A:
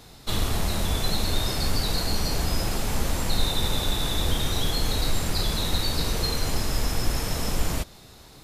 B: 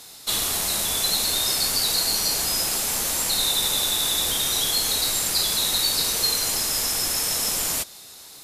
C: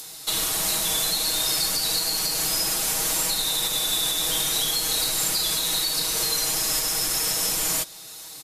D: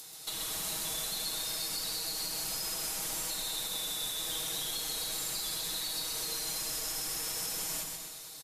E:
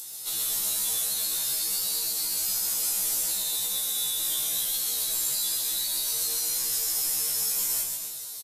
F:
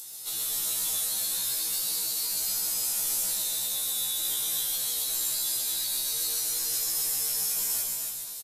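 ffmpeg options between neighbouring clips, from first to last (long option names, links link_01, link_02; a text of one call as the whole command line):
ffmpeg -i in.wav -af "lowpass=11000,aemphasis=mode=production:type=riaa" out.wav
ffmpeg -i in.wav -filter_complex "[0:a]aecho=1:1:6.3:0.81,acrossover=split=220|1100|5300[link_01][link_02][link_03][link_04];[link_04]acompressor=mode=upward:threshold=-36dB:ratio=2.5[link_05];[link_01][link_02][link_03][link_05]amix=inputs=4:normalize=0,alimiter=limit=-13.5dB:level=0:latency=1:release=263" out.wav
ffmpeg -i in.wav -af "acompressor=threshold=-27dB:ratio=3,aecho=1:1:130|247|352.3|447.1|532.4:0.631|0.398|0.251|0.158|0.1,volume=-9dB" out.wav
ffmpeg -i in.wav -filter_complex "[0:a]crystalizer=i=2.5:c=0,asplit=2[link_01][link_02];[link_02]adelay=33,volume=-11dB[link_03];[link_01][link_03]amix=inputs=2:normalize=0,afftfilt=real='re*1.73*eq(mod(b,3),0)':imag='im*1.73*eq(mod(b,3),0)':win_size=2048:overlap=0.75" out.wav
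ffmpeg -i in.wav -af "aecho=1:1:270:0.562,volume=-2.5dB" out.wav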